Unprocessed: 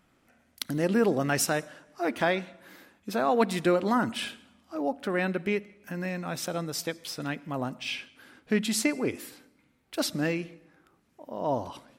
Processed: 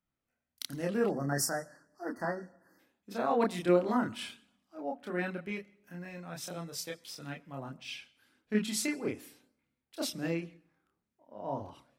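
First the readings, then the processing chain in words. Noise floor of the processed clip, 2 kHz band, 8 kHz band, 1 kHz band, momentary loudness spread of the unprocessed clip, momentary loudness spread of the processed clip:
under -85 dBFS, -8.0 dB, -4.5 dB, -6.0 dB, 14 LU, 16 LU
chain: chorus voices 2, 0.77 Hz, delay 29 ms, depth 1 ms; spectral delete 1.11–2.79, 2000–4300 Hz; three-band expander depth 40%; gain -4.5 dB

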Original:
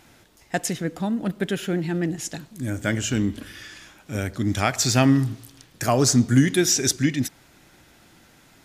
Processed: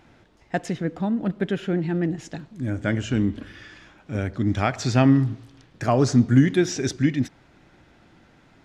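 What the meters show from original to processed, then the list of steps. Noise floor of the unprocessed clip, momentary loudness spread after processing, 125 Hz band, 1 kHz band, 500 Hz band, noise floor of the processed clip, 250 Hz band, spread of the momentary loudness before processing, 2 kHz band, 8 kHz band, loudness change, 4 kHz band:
-55 dBFS, 14 LU, +1.0 dB, -0.5 dB, +0.5 dB, -57 dBFS, +1.0 dB, 14 LU, -2.5 dB, -13.0 dB, -0.5 dB, -8.0 dB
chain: tape spacing loss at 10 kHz 22 dB; gain +1.5 dB

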